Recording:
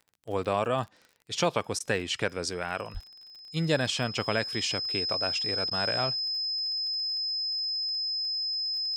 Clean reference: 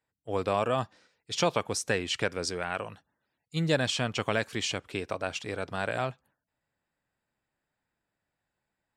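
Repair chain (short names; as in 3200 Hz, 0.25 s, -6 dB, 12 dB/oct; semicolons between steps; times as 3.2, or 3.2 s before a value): de-click; notch 5100 Hz, Q 30; de-plosive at 2.93; interpolate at 1.79/5.7, 12 ms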